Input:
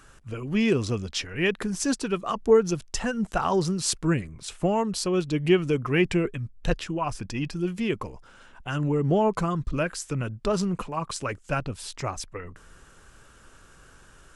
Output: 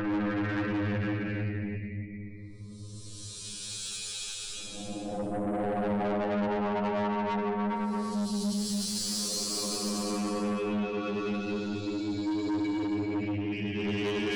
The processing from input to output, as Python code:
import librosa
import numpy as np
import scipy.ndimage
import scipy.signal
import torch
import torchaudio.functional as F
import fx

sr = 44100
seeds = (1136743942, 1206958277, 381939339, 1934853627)

y = fx.robotise(x, sr, hz=103.0)
y = fx.spec_gate(y, sr, threshold_db=-25, keep='strong')
y = fx.paulstretch(y, sr, seeds[0], factor=10.0, window_s=0.25, from_s=4.07)
y = 10.0 ** (-30.0 / 20.0) * np.tanh(y / 10.0 ** (-30.0 / 20.0))
y = y + 10.0 ** (-17.0 / 20.0) * np.pad(y, (int(125 * sr / 1000.0), 0))[:len(y)]
y = F.gain(torch.from_numpy(y), 3.0).numpy()